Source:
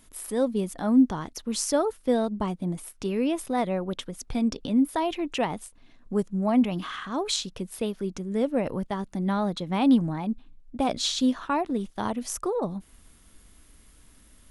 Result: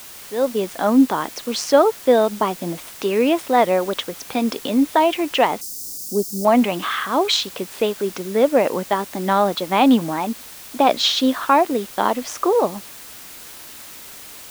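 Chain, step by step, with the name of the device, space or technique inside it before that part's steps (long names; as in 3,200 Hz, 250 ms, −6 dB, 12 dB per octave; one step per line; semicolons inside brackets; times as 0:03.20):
dictaphone (band-pass filter 390–4,000 Hz; automatic gain control gain up to 11.5 dB; tape wow and flutter; white noise bed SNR 19 dB)
0:05.61–0:06.45: drawn EQ curve 350 Hz 0 dB, 2,400 Hz −30 dB, 5,100 Hz +8 dB
level +1.5 dB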